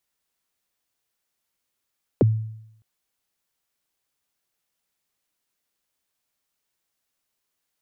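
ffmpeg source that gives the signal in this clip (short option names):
-f lavfi -i "aevalsrc='0.282*pow(10,-3*t/0.78)*sin(2*PI*(580*0.022/log(110/580)*(exp(log(110/580)*min(t,0.022)/0.022)-1)+110*max(t-0.022,0)))':d=0.61:s=44100"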